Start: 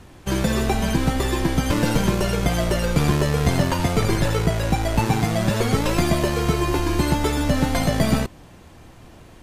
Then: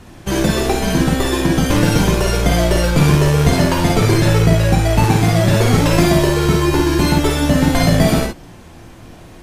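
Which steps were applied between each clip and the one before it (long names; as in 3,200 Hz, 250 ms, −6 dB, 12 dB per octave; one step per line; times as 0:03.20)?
reverb whose tail is shaped and stops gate 80 ms rising, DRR 1.5 dB
level +4 dB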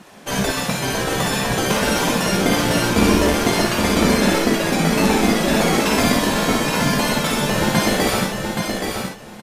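gate on every frequency bin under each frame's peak −10 dB weak
parametric band 190 Hz +12.5 dB 0.86 octaves
repeating echo 823 ms, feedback 16%, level −5 dB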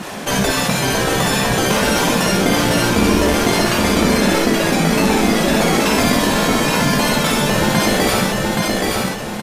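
envelope flattener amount 50%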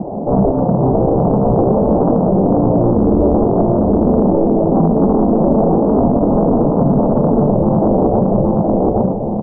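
Butterworth low-pass 790 Hz 48 dB per octave
brickwall limiter −12.5 dBFS, peak gain reduction 8.5 dB
highs frequency-modulated by the lows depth 0.41 ms
level +8 dB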